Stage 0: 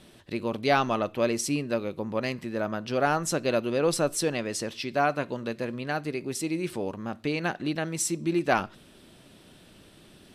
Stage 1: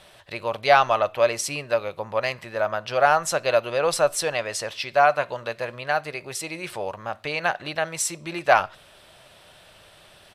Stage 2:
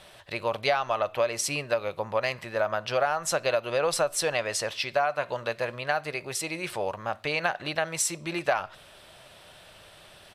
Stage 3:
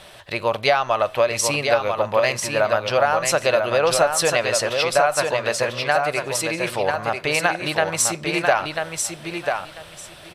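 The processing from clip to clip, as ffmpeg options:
-af "firequalizer=gain_entry='entry(110,0);entry(250,-13);entry(590,9);entry(6000,4)':delay=0.05:min_phase=1,volume=-1dB"
-af "acompressor=threshold=-21dB:ratio=12"
-af "aecho=1:1:993|1986|2979:0.562|0.101|0.0182,volume=7dB"

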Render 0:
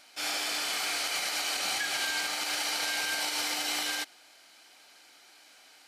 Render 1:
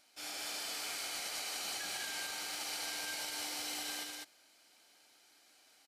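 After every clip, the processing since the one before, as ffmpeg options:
-filter_complex "[0:a]equalizer=f=1.7k:w=0.33:g=-6,asplit=2[a][b];[b]aecho=0:1:151.6|201.2:0.316|0.794[c];[a][c]amix=inputs=2:normalize=0,volume=-7.5dB"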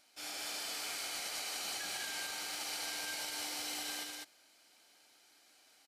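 -af anull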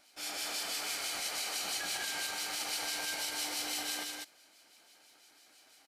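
-filter_complex "[0:a]acrossover=split=2200[a][b];[a]aeval=exprs='val(0)*(1-0.5/2+0.5/2*cos(2*PI*6*n/s))':c=same[c];[b]aeval=exprs='val(0)*(1-0.5/2-0.5/2*cos(2*PI*6*n/s))':c=same[d];[c][d]amix=inputs=2:normalize=0,volume=6dB"

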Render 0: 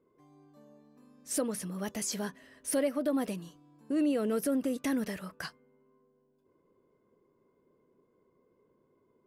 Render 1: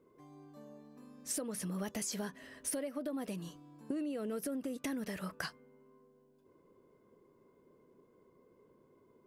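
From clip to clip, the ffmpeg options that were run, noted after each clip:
-af "acompressor=threshold=-39dB:ratio=16,volume=4dB"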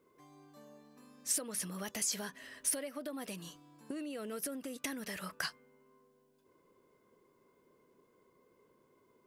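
-af "tiltshelf=f=930:g=-5.5"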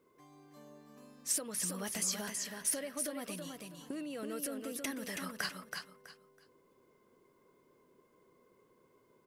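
-af "aecho=1:1:326|652|978:0.562|0.129|0.0297"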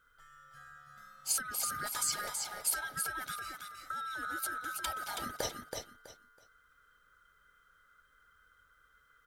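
-af "afftfilt=real='real(if(lt(b,960),b+48*(1-2*mod(floor(b/48),2)),b),0)':imag='imag(if(lt(b,960),b+48*(1-2*mod(floor(b/48),2)),b),0)':win_size=2048:overlap=0.75,volume=1.5dB"

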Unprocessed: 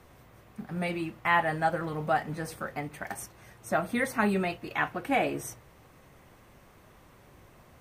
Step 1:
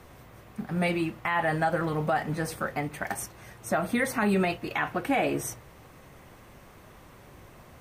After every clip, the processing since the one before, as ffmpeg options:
-af "alimiter=limit=-21.5dB:level=0:latency=1:release=55,volume=5dB"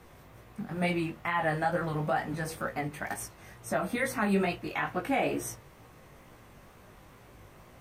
-af "flanger=delay=16.5:depth=4.6:speed=2.2"

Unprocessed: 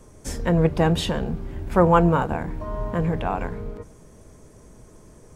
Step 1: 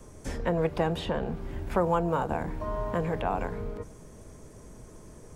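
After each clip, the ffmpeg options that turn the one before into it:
-filter_complex "[0:a]acrossover=split=400|1100|3500[a][b][c][d];[a]acompressor=threshold=-32dB:ratio=4[e];[b]acompressor=threshold=-26dB:ratio=4[f];[c]acompressor=threshold=-40dB:ratio=4[g];[d]acompressor=threshold=-53dB:ratio=4[h];[e][f][g][h]amix=inputs=4:normalize=0"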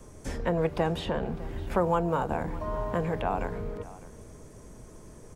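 -af "aecho=1:1:605:0.112"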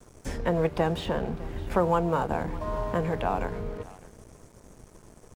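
-af "aeval=exprs='sgn(val(0))*max(abs(val(0))-0.00316,0)':c=same,volume=2dB"

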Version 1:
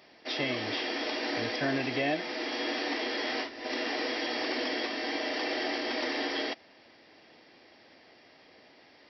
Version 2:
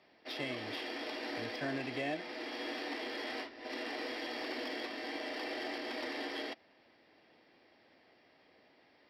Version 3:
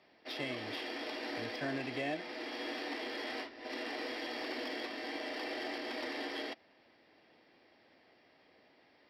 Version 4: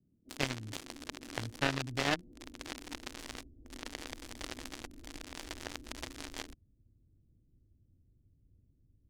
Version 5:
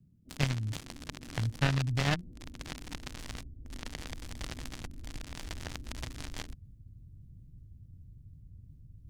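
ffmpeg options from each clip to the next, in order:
-filter_complex "[0:a]acrossover=split=270|2800[a][b][c];[b]acrusher=bits=6:mode=log:mix=0:aa=0.000001[d];[a][d][c]amix=inputs=3:normalize=0,adynamicsmooth=sensitivity=6:basefreq=5.1k,volume=-7.5dB"
-af anull
-filter_complex "[0:a]asubboost=boost=10.5:cutoff=64,acrossover=split=190[a][b];[b]acrusher=bits=4:mix=0:aa=0.5[c];[a][c]amix=inputs=2:normalize=0,volume=11.5dB"
-af "lowshelf=f=220:t=q:w=1.5:g=9.5,areverse,acompressor=mode=upward:threshold=-43dB:ratio=2.5,areverse"

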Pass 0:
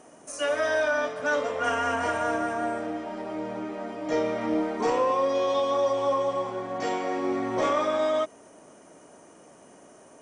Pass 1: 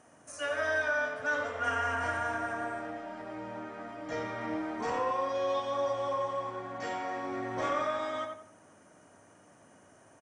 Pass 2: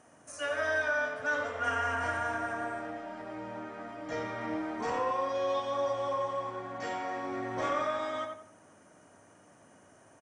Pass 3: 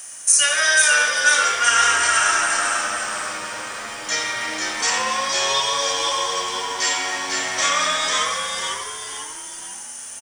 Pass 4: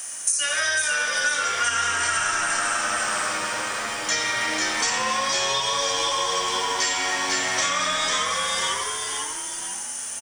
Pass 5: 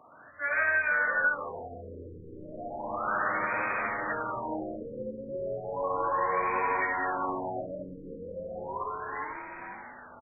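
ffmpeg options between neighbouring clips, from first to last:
-filter_complex "[0:a]equalizer=f=100:t=o:w=0.67:g=12,equalizer=f=400:t=o:w=0.67:g=-5,equalizer=f=1.6k:t=o:w=0.67:g=6,asplit=2[a][b];[b]adelay=89,lowpass=f=2.6k:p=1,volume=-5dB,asplit=2[c][d];[d]adelay=89,lowpass=f=2.6k:p=1,volume=0.33,asplit=2[e][f];[f]adelay=89,lowpass=f=2.6k:p=1,volume=0.33,asplit=2[g][h];[h]adelay=89,lowpass=f=2.6k:p=1,volume=0.33[i];[c][e][g][i]amix=inputs=4:normalize=0[j];[a][j]amix=inputs=2:normalize=0,volume=-8dB"
-af anull
-filter_complex "[0:a]crystalizer=i=9:c=0,tiltshelf=f=1.2k:g=-9,asplit=6[a][b][c][d][e][f];[b]adelay=496,afreqshift=-94,volume=-4.5dB[g];[c]adelay=992,afreqshift=-188,volume=-12.2dB[h];[d]adelay=1488,afreqshift=-282,volume=-20dB[i];[e]adelay=1984,afreqshift=-376,volume=-27.7dB[j];[f]adelay=2480,afreqshift=-470,volume=-35.5dB[k];[a][g][h][i][j][k]amix=inputs=6:normalize=0,volume=4.5dB"
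-filter_complex "[0:a]acrossover=split=230[a][b];[b]acompressor=threshold=-23dB:ratio=10[c];[a][c]amix=inputs=2:normalize=0,volume=3dB"
-af "afftfilt=real='re*lt(b*sr/1024,540*pow(2600/540,0.5+0.5*sin(2*PI*0.34*pts/sr)))':imag='im*lt(b*sr/1024,540*pow(2600/540,0.5+0.5*sin(2*PI*0.34*pts/sr)))':win_size=1024:overlap=0.75,volume=-1.5dB"

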